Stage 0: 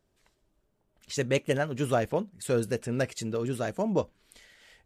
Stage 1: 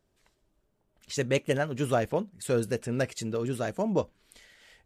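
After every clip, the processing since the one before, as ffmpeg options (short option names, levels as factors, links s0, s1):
-af anull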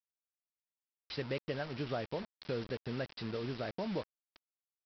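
-af "acompressor=threshold=0.0224:ratio=2.5,aresample=11025,acrusher=bits=6:mix=0:aa=0.000001,aresample=44100,volume=0.631"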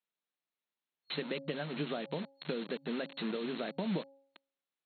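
-filter_complex "[0:a]afftfilt=real='re*between(b*sr/4096,140,4300)':imag='im*between(b*sr/4096,140,4300)':win_size=4096:overlap=0.75,bandreject=f=274.4:t=h:w=4,bandreject=f=548.8:t=h:w=4,bandreject=f=823.2:t=h:w=4,acrossover=split=230|3000[s0][s1][s2];[s1]acompressor=threshold=0.00794:ratio=6[s3];[s0][s3][s2]amix=inputs=3:normalize=0,volume=2"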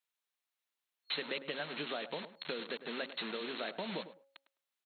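-filter_complex "[0:a]highpass=f=920:p=1,asplit=2[s0][s1];[s1]adelay=104,lowpass=f=1500:p=1,volume=0.251,asplit=2[s2][s3];[s3]adelay=104,lowpass=f=1500:p=1,volume=0.16[s4];[s0][s2][s4]amix=inputs=3:normalize=0,volume=1.5"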